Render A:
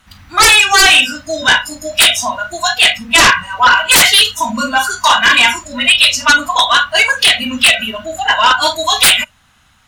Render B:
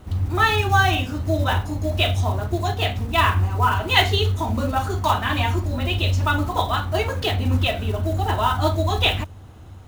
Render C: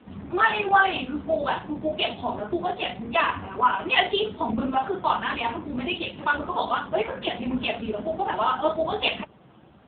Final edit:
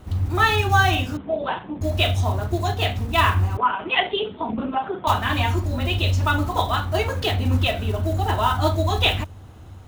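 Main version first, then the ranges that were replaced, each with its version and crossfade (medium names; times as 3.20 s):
B
1.17–1.81 s: from C
3.57–5.07 s: from C
not used: A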